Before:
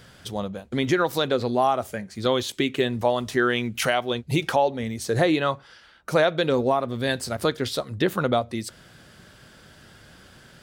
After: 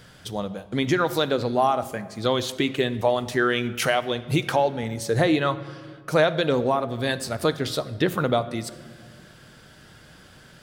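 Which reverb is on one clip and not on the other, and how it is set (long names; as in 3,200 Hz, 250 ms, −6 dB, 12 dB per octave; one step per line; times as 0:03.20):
rectangular room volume 2,500 cubic metres, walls mixed, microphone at 0.48 metres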